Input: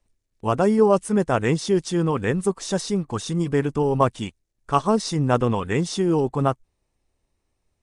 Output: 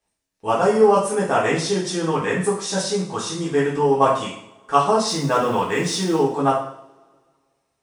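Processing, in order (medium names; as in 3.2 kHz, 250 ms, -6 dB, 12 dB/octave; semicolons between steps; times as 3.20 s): 5.07–6.17 s: companding laws mixed up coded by mu; high-pass 400 Hz 6 dB/octave; two-slope reverb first 0.57 s, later 1.9 s, from -24 dB, DRR -6.5 dB; trim -2 dB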